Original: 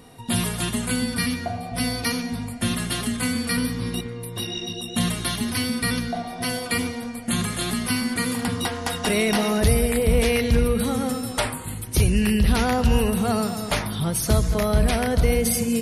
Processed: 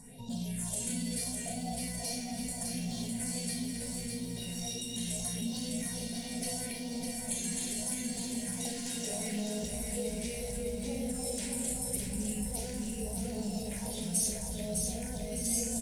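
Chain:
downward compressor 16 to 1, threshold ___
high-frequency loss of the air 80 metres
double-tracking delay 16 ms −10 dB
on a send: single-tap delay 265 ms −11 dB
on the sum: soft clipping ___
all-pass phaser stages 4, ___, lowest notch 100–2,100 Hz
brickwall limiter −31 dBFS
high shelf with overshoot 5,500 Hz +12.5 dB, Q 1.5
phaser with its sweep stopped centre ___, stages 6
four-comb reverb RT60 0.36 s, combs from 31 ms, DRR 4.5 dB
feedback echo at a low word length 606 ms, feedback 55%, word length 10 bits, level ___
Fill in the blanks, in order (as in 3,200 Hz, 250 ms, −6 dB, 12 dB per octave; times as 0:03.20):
−25 dBFS, −21.5 dBFS, 0.76 Hz, 330 Hz, −4 dB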